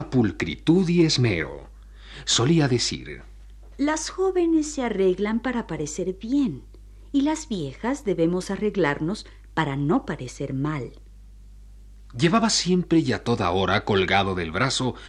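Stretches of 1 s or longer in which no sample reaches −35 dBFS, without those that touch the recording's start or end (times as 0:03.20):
0:10.89–0:12.10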